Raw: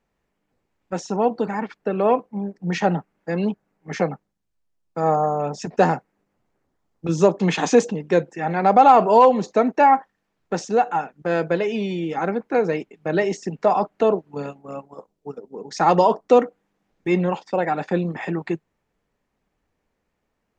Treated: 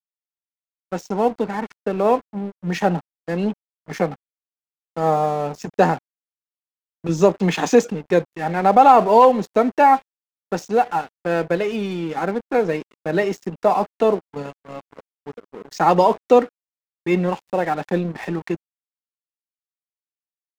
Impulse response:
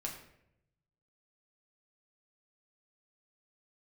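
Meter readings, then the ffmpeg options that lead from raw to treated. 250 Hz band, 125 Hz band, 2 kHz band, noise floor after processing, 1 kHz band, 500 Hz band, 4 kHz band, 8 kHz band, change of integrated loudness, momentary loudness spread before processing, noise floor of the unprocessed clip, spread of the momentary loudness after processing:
+0.5 dB, +0.5 dB, +1.0 dB, under -85 dBFS, +1.0 dB, +1.0 dB, +0.5 dB, -0.5 dB, +1.0 dB, 17 LU, -76 dBFS, 16 LU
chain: -af "aeval=exprs='sgn(val(0))*max(abs(val(0))-0.0112,0)':c=same,volume=1.5dB"

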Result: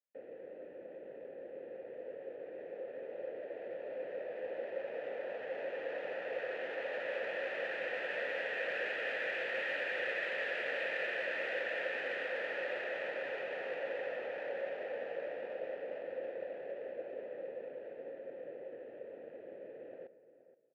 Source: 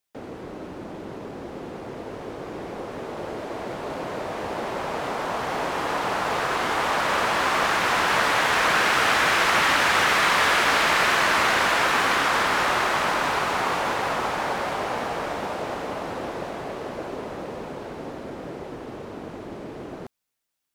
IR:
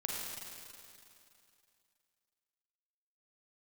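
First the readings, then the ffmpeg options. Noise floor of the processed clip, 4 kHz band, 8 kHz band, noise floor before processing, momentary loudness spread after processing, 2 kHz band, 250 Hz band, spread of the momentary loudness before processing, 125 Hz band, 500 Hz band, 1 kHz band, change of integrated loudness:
-52 dBFS, -22.5 dB, under -35 dB, -39 dBFS, 13 LU, -15.5 dB, -21.5 dB, 19 LU, under -25 dB, -9.0 dB, -26.5 dB, -17.0 dB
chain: -filter_complex "[0:a]aresample=11025,asoftclip=type=tanh:threshold=-17dB,aresample=44100,lowpass=4.2k,asplit=2[a][b];[b]adelay=474,lowpass=f=2.1k:p=1,volume=-14dB,asplit=2[c][d];[d]adelay=474,lowpass=f=2.1k:p=1,volume=0.2[e];[a][c][e]amix=inputs=3:normalize=0,asplit=2[f][g];[1:a]atrim=start_sample=2205,adelay=70[h];[g][h]afir=irnorm=-1:irlink=0,volume=-21.5dB[i];[f][i]amix=inputs=2:normalize=0,adynamicsmooth=sensitivity=4:basefreq=2.1k,asplit=3[j][k][l];[j]bandpass=f=530:t=q:w=8,volume=0dB[m];[k]bandpass=f=1.84k:t=q:w=8,volume=-6dB[n];[l]bandpass=f=2.48k:t=q:w=8,volume=-9dB[o];[m][n][o]amix=inputs=3:normalize=0,volume=-2dB"

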